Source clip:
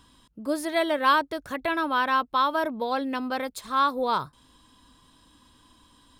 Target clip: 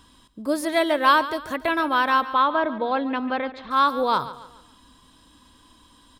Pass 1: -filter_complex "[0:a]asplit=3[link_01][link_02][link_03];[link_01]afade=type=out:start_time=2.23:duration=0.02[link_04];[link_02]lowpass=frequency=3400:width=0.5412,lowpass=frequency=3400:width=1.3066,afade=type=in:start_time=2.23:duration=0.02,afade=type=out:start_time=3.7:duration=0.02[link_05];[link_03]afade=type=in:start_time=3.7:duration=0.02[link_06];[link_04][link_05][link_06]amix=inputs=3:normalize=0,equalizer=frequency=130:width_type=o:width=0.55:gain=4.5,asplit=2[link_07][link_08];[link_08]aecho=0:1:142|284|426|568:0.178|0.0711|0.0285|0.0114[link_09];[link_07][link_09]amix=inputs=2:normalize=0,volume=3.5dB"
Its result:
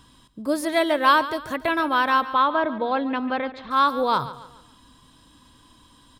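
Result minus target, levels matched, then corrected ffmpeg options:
125 Hz band +4.5 dB
-filter_complex "[0:a]asplit=3[link_01][link_02][link_03];[link_01]afade=type=out:start_time=2.23:duration=0.02[link_04];[link_02]lowpass=frequency=3400:width=0.5412,lowpass=frequency=3400:width=1.3066,afade=type=in:start_time=2.23:duration=0.02,afade=type=out:start_time=3.7:duration=0.02[link_05];[link_03]afade=type=in:start_time=3.7:duration=0.02[link_06];[link_04][link_05][link_06]amix=inputs=3:normalize=0,equalizer=frequency=130:width_type=o:width=0.55:gain=-3.5,asplit=2[link_07][link_08];[link_08]aecho=0:1:142|284|426|568:0.178|0.0711|0.0285|0.0114[link_09];[link_07][link_09]amix=inputs=2:normalize=0,volume=3.5dB"

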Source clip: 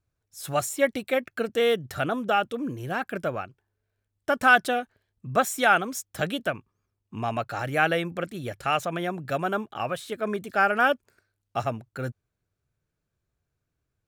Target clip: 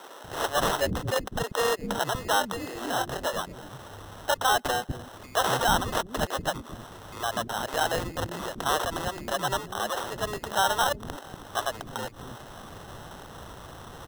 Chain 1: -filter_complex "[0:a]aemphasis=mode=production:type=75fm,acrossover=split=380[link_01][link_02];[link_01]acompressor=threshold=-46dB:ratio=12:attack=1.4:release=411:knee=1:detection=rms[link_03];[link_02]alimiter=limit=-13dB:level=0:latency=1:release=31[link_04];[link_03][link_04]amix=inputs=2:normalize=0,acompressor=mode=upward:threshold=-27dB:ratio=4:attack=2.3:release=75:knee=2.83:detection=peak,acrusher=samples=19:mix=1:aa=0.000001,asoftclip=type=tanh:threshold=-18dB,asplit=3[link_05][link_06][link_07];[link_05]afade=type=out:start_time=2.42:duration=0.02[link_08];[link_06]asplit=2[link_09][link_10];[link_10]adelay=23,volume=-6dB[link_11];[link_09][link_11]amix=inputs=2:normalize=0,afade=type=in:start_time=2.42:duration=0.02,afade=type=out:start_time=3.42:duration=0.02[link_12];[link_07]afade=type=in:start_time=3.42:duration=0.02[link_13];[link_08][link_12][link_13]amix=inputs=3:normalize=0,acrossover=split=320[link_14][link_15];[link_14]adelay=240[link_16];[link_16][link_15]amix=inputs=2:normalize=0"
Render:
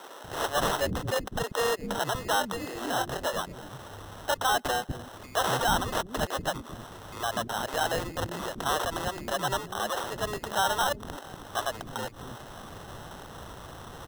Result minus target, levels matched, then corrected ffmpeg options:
soft clipping: distortion +19 dB
-filter_complex "[0:a]aemphasis=mode=production:type=75fm,acrossover=split=380[link_01][link_02];[link_01]acompressor=threshold=-46dB:ratio=12:attack=1.4:release=411:knee=1:detection=rms[link_03];[link_02]alimiter=limit=-13dB:level=0:latency=1:release=31[link_04];[link_03][link_04]amix=inputs=2:normalize=0,acompressor=mode=upward:threshold=-27dB:ratio=4:attack=2.3:release=75:knee=2.83:detection=peak,acrusher=samples=19:mix=1:aa=0.000001,asoftclip=type=tanh:threshold=-6.5dB,asplit=3[link_05][link_06][link_07];[link_05]afade=type=out:start_time=2.42:duration=0.02[link_08];[link_06]asplit=2[link_09][link_10];[link_10]adelay=23,volume=-6dB[link_11];[link_09][link_11]amix=inputs=2:normalize=0,afade=type=in:start_time=2.42:duration=0.02,afade=type=out:start_time=3.42:duration=0.02[link_12];[link_07]afade=type=in:start_time=3.42:duration=0.02[link_13];[link_08][link_12][link_13]amix=inputs=3:normalize=0,acrossover=split=320[link_14][link_15];[link_14]adelay=240[link_16];[link_16][link_15]amix=inputs=2:normalize=0"

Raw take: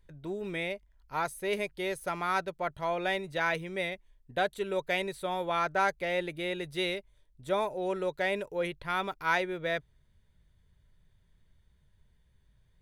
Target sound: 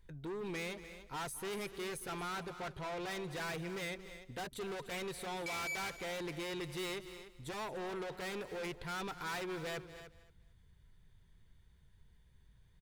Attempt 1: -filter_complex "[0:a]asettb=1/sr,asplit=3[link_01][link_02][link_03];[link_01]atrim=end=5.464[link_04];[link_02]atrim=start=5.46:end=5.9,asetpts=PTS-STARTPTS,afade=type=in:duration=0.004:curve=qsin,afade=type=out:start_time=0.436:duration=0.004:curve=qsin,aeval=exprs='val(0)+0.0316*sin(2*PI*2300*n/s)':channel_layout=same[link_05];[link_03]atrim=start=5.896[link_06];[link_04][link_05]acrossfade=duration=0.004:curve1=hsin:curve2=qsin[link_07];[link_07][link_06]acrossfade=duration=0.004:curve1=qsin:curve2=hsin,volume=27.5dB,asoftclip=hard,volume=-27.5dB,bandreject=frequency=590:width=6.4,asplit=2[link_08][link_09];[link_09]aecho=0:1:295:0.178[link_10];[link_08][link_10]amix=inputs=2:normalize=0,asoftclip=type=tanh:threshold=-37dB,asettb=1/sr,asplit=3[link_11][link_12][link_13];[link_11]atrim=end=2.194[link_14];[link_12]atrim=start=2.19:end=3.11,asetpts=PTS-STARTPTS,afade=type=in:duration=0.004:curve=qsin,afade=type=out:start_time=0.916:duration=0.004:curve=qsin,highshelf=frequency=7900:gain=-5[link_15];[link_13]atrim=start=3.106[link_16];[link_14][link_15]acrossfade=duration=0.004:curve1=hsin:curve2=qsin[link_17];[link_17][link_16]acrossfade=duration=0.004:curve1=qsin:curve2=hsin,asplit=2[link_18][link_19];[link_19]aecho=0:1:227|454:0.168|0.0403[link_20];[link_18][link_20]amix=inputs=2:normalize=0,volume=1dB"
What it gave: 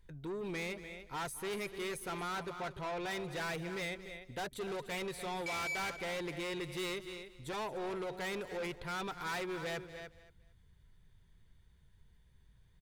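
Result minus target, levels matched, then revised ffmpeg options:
gain into a clipping stage and back: distortion −7 dB
-filter_complex "[0:a]asettb=1/sr,asplit=3[link_01][link_02][link_03];[link_01]atrim=end=5.464[link_04];[link_02]atrim=start=5.46:end=5.9,asetpts=PTS-STARTPTS,afade=type=in:duration=0.004:curve=qsin,afade=type=out:start_time=0.436:duration=0.004:curve=qsin,aeval=exprs='val(0)+0.0316*sin(2*PI*2300*n/s)':channel_layout=same[link_05];[link_03]atrim=start=5.896[link_06];[link_04][link_05]acrossfade=duration=0.004:curve1=hsin:curve2=qsin[link_07];[link_07][link_06]acrossfade=duration=0.004:curve1=qsin:curve2=hsin,volume=37dB,asoftclip=hard,volume=-37dB,bandreject=frequency=590:width=6.4,asplit=2[link_08][link_09];[link_09]aecho=0:1:295:0.178[link_10];[link_08][link_10]amix=inputs=2:normalize=0,asoftclip=type=tanh:threshold=-37dB,asettb=1/sr,asplit=3[link_11][link_12][link_13];[link_11]atrim=end=2.194[link_14];[link_12]atrim=start=2.19:end=3.11,asetpts=PTS-STARTPTS,afade=type=in:duration=0.004:curve=qsin,afade=type=out:start_time=0.916:duration=0.004:curve=qsin,highshelf=frequency=7900:gain=-5[link_15];[link_13]atrim=start=3.106[link_16];[link_14][link_15]acrossfade=duration=0.004:curve1=hsin:curve2=qsin[link_17];[link_17][link_16]acrossfade=duration=0.004:curve1=qsin:curve2=hsin,asplit=2[link_18][link_19];[link_19]aecho=0:1:227|454:0.168|0.0403[link_20];[link_18][link_20]amix=inputs=2:normalize=0,volume=1dB"

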